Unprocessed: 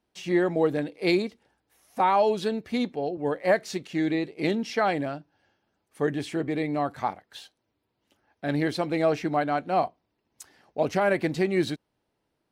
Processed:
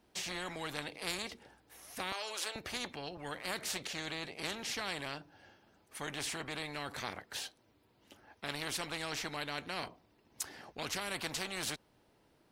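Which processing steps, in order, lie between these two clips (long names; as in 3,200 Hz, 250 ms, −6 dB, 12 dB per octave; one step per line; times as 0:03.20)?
0:02.12–0:02.56: Butterworth high-pass 470 Hz 36 dB per octave
every bin compressed towards the loudest bin 4 to 1
level −6.5 dB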